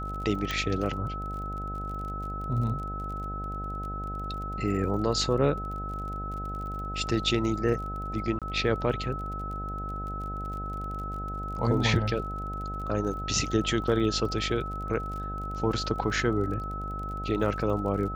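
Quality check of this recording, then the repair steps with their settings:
buzz 50 Hz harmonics 16 -36 dBFS
crackle 33 per s -37 dBFS
whine 1.3 kHz -35 dBFS
0.51 s: pop -15 dBFS
8.39–8.42 s: dropout 27 ms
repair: de-click; de-hum 50 Hz, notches 16; band-stop 1.3 kHz, Q 30; interpolate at 8.39 s, 27 ms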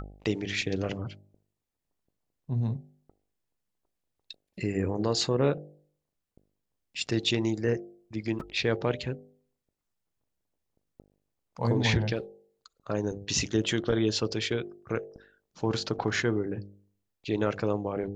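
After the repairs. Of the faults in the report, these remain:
nothing left

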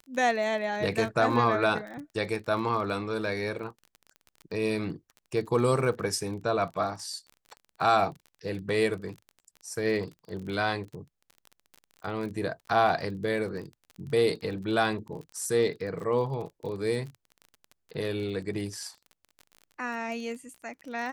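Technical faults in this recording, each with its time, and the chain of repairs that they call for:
crackle 29 per s -37 dBFS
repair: de-click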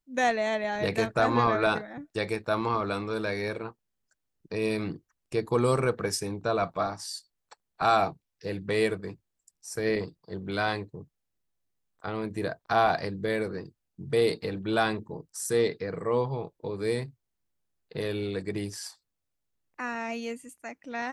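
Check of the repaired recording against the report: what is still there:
nothing left

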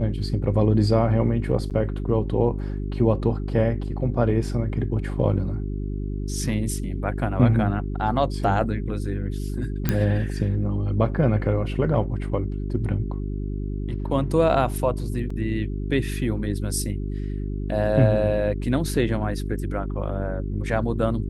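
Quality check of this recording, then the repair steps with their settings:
hum 50 Hz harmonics 8 -28 dBFS
1.70–1.71 s: dropout 7.9 ms
9.89 s: pop -7 dBFS
15.30 s: dropout 4.2 ms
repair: de-click; de-hum 50 Hz, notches 8; interpolate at 1.70 s, 7.9 ms; interpolate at 15.30 s, 4.2 ms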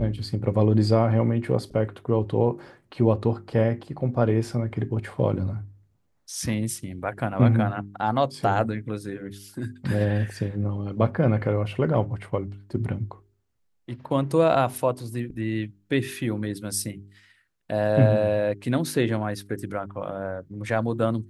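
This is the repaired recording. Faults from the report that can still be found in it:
nothing left

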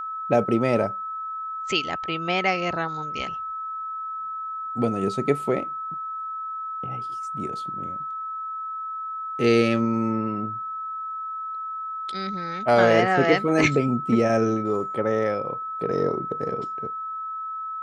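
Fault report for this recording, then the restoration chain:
whine 1.3 kHz -29 dBFS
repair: band-stop 1.3 kHz, Q 30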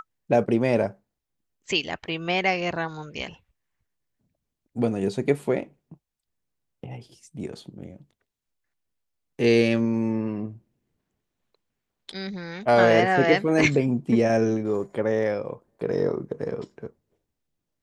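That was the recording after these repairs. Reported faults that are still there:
nothing left

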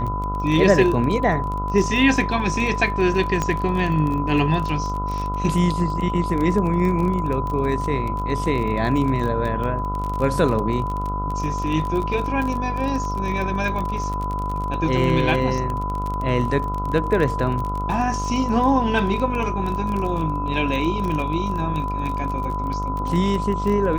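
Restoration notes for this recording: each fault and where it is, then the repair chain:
buzz 50 Hz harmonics 28 -27 dBFS
crackle 27 per s -25 dBFS
whine 1 kHz -26 dBFS
3.42 s: pop -10 dBFS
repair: de-click; de-hum 50 Hz, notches 28; band-stop 1 kHz, Q 30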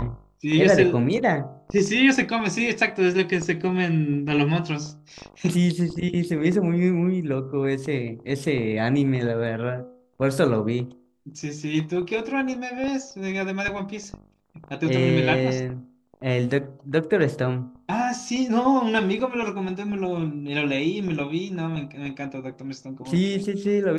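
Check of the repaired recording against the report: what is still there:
nothing left

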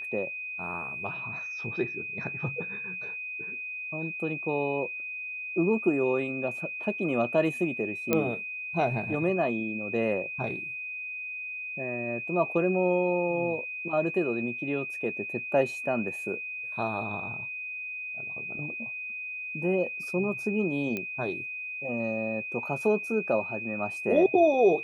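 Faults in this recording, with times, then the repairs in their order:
whine 2.5 kHz -34 dBFS
8.13 s: pop -10 dBFS
20.97 s: pop -18 dBFS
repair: de-click; band-stop 2.5 kHz, Q 30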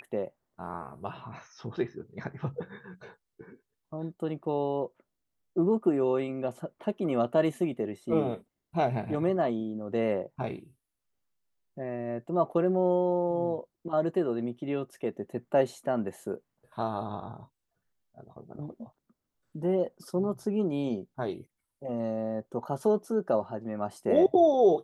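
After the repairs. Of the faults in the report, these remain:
nothing left

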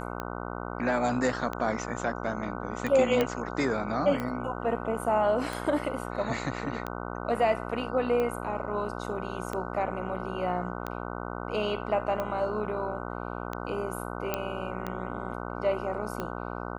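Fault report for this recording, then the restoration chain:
buzz 60 Hz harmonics 25 -36 dBFS
tick 45 rpm -19 dBFS
3.21 s: pop -13 dBFS
14.34 s: pop -13 dBFS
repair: de-click; de-hum 60 Hz, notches 25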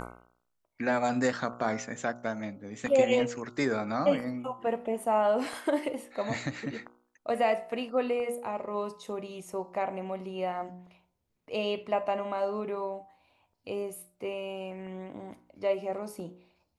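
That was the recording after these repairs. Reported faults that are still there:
14.34 s: pop

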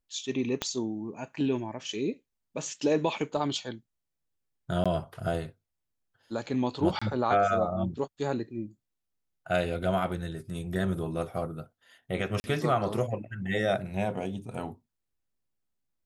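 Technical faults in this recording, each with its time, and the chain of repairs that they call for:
0.62 s: pop -13 dBFS
4.84–4.86 s: dropout 16 ms
6.99–7.01 s: dropout 25 ms
12.40–12.44 s: dropout 40 ms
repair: de-click; interpolate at 4.84 s, 16 ms; interpolate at 6.99 s, 25 ms; interpolate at 12.40 s, 40 ms

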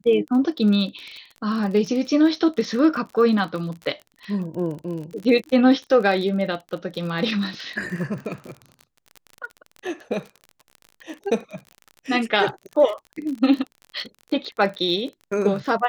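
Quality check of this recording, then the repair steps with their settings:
crackle 37 per s -30 dBFS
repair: de-click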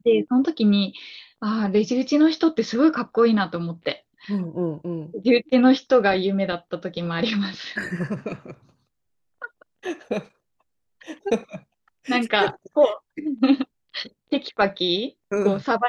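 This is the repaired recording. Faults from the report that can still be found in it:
nothing left

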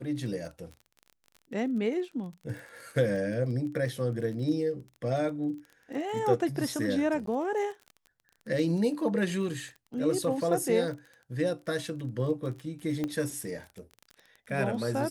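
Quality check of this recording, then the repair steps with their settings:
crackle 29 per s -38 dBFS
7.26–7.27 s: dropout 13 ms
13.04 s: pop -19 dBFS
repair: de-click; interpolate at 7.26 s, 13 ms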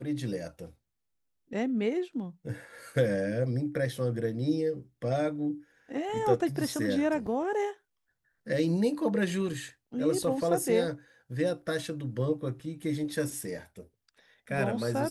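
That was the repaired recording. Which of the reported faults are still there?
nothing left

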